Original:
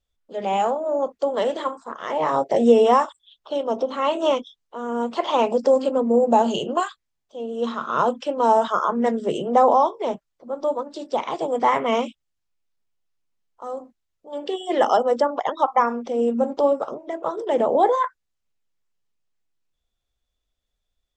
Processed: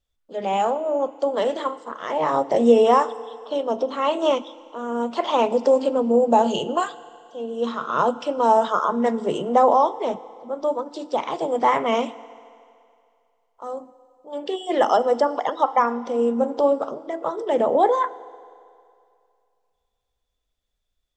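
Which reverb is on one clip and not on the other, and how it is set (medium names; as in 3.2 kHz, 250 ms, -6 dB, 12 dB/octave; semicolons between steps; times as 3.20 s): FDN reverb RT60 2.4 s, low-frequency decay 0.7×, high-frequency decay 0.95×, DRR 16 dB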